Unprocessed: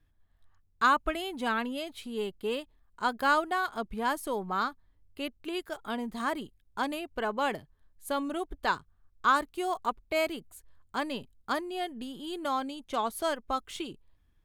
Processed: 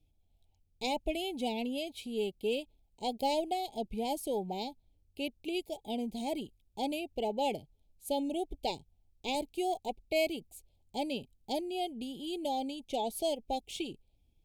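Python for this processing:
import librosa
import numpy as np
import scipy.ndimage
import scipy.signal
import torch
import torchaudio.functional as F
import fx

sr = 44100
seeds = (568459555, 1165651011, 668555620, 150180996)

y = fx.cheby_harmonics(x, sr, harmonics=(2,), levels_db=(-15,), full_scale_db=-12.0)
y = scipy.signal.sosfilt(scipy.signal.cheby1(4, 1.0, [840.0, 2300.0], 'bandstop', fs=sr, output='sos'), y)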